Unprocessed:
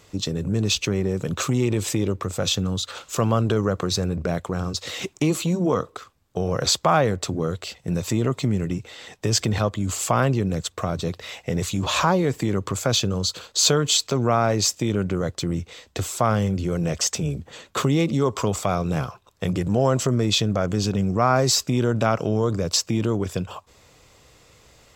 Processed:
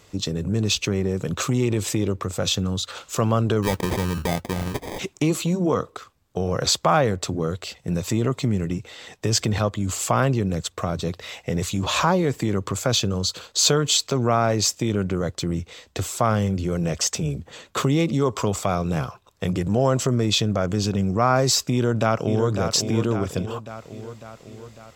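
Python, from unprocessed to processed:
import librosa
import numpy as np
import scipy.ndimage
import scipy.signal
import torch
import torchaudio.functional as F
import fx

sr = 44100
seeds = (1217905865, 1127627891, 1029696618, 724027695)

y = fx.sample_hold(x, sr, seeds[0], rate_hz=1400.0, jitter_pct=0, at=(3.62, 4.98), fade=0.02)
y = fx.echo_throw(y, sr, start_s=21.72, length_s=0.76, ms=550, feedback_pct=60, wet_db=-7.0)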